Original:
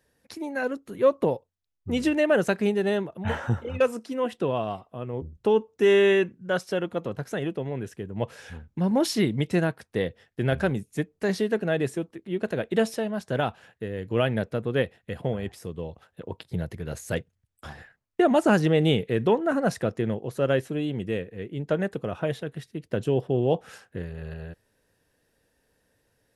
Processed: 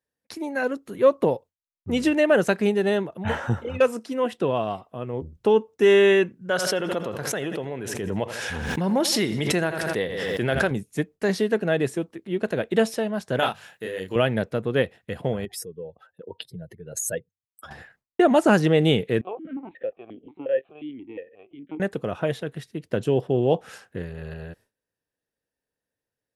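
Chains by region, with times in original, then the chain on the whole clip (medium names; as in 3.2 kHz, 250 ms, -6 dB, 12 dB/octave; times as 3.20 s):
6.50–10.71 s: bass shelf 320 Hz -8 dB + feedback delay 82 ms, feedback 46%, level -17.5 dB + swell ahead of each attack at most 22 dB/s
13.39–14.16 s: tilt EQ +2.5 dB/octave + hum notches 50/100/150/200 Hz + doubling 32 ms -3 dB
15.45–17.71 s: spectral contrast enhancement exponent 1.9 + RIAA curve recording
19.21–21.80 s: LPC vocoder at 8 kHz pitch kept + stepped vowel filter 5.6 Hz
whole clip: gate with hold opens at -49 dBFS; bass shelf 89 Hz -7 dB; trim +3 dB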